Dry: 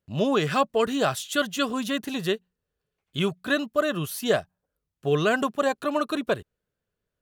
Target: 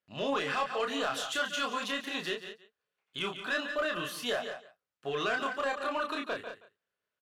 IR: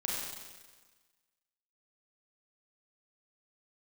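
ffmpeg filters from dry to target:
-filter_complex "[0:a]bandpass=f=1.9k:t=q:w=0.58:csg=0,asplit=2[a][b];[b]aecho=0:1:143:0.141[c];[a][c]amix=inputs=2:normalize=0,asoftclip=type=tanh:threshold=-20.5dB,asplit=2[d][e];[e]aecho=0:1:176:0.211[f];[d][f]amix=inputs=2:normalize=0,alimiter=level_in=1.5dB:limit=-24dB:level=0:latency=1:release=40,volume=-1.5dB,asplit=2[g][h];[h]adelay=29,volume=-3.5dB[i];[g][i]amix=inputs=2:normalize=0"

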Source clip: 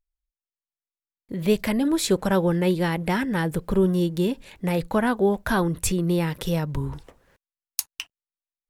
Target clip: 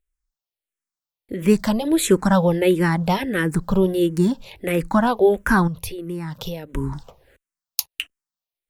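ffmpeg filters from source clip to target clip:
-filter_complex "[0:a]asettb=1/sr,asplit=3[a][b][c];[a]atrim=end=5.674[d];[b]atrim=start=5.67:end=6.74,asetpts=PTS-STARTPTS,afade=t=in:d=0.004:c=qsin,afade=t=out:st=1.066:d=0.004:c=qsin,acompressor=threshold=-30dB:ratio=10[e];[c]atrim=start=6.736[f];[d][e]acrossfade=d=0.004:c1=hsin:c2=qsin[g];[g][f]acrossfade=d=0.004:c1=qsin:c2=hsin,asplit=2[h][i];[i]afreqshift=-1.5[j];[h][j]amix=inputs=2:normalize=1,volume=7dB"

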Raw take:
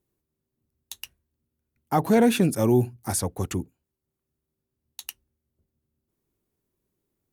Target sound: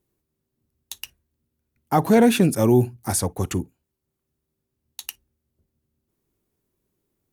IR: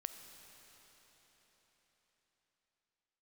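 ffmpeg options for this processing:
-filter_complex "[0:a]asplit=2[a][b];[1:a]atrim=start_sample=2205,atrim=end_sample=3528,asetrate=57330,aresample=44100[c];[b][c]afir=irnorm=-1:irlink=0,volume=-0.5dB[d];[a][d]amix=inputs=2:normalize=0"

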